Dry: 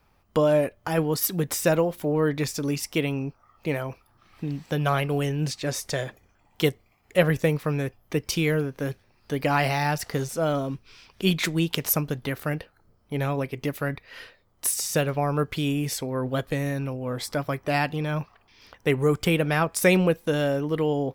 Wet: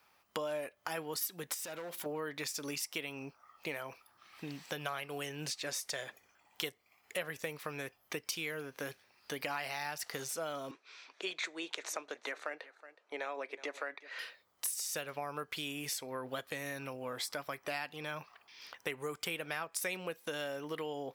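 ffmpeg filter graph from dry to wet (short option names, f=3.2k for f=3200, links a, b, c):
-filter_complex "[0:a]asettb=1/sr,asplit=3[a][b][c];[a]atrim=end=1.544[d];[b]atrim=start=1.54:end=2.06,asetpts=PTS-STARTPTS,afade=t=in:d=0.004:c=qsin,afade=t=out:st=0.516:d=0.004:c=qsin,acompressor=threshold=-31dB:ratio=4:attack=3.2:release=140:knee=1:detection=peak,asoftclip=type=hard:threshold=-30.5dB[e];[c]atrim=start=2.056[f];[d][e]acrossfade=d=0.004:c1=hsin:c2=qsin[g];[g][f]acrossfade=d=0.004:c1=qsin:c2=hsin,asettb=1/sr,asplit=3[h][i][j];[h]atrim=end=10.714[k];[i]atrim=start=10.71:end=14.19,asetpts=PTS-STARTPTS,afade=t=in:d=0.004:c=qsin,afade=t=out:st=3.476:d=0.004:c=qsin,highpass=f=320:w=0.5412,highpass=f=320:w=1.3066,equalizer=f=620:t=q:w=4:g=3,equalizer=f=3k:t=q:w=4:g=-8,equalizer=f=5.1k:t=q:w=4:g=-10,lowpass=f=6.6k:w=0.5412,lowpass=f=6.6k:w=1.3066,aecho=1:1:369:0.0841,atrim=end_sample=153468[l];[j]atrim=start=14.186[m];[k][l]acrossfade=d=0.004:c1=hsin:c2=qsin[n];[n][m]acrossfade=d=0.004:c1=qsin:c2=hsin,highpass=f=1.3k:p=1,acompressor=threshold=-39dB:ratio=4,volume=2dB"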